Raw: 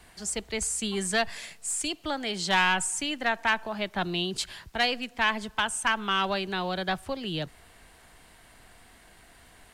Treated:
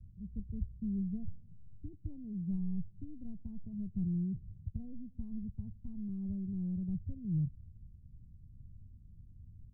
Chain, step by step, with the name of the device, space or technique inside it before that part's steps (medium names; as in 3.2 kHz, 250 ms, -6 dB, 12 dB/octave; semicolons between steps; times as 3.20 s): the neighbour's flat through the wall (low-pass 170 Hz 24 dB/octave; peaking EQ 98 Hz +8 dB 0.77 oct); trim +4.5 dB